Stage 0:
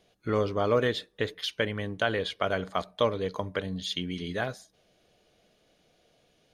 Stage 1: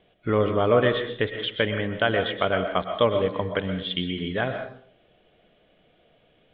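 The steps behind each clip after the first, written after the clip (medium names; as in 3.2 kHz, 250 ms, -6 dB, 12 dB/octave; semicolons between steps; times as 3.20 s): Chebyshev low-pass 3.4 kHz, order 5; reverberation RT60 0.55 s, pre-delay 85 ms, DRR 6.5 dB; trim +5 dB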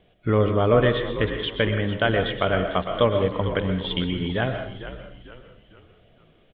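bass shelf 150 Hz +9 dB; frequency-shifting echo 450 ms, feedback 41%, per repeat -72 Hz, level -12 dB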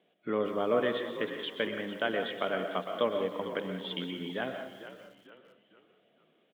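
high-pass 200 Hz 24 dB/octave; bit-crushed delay 180 ms, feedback 35%, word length 7-bit, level -14 dB; trim -9 dB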